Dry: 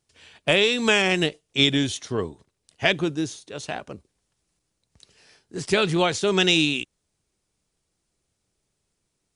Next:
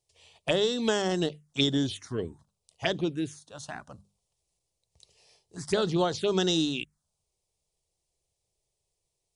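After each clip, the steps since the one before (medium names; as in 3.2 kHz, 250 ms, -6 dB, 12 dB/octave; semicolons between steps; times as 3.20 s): hum notches 50/100/150/200 Hz; touch-sensitive phaser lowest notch 250 Hz, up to 2.4 kHz, full sweep at -17.5 dBFS; trim -3.5 dB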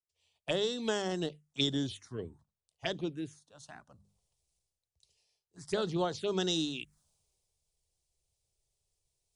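reverse; upward compressor, threshold -48 dBFS; reverse; three bands expanded up and down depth 40%; trim -7 dB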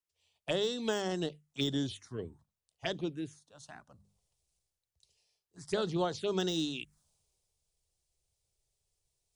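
de-esser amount 90%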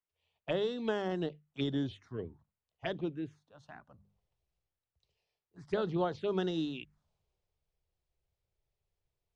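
low-pass 2.4 kHz 12 dB/octave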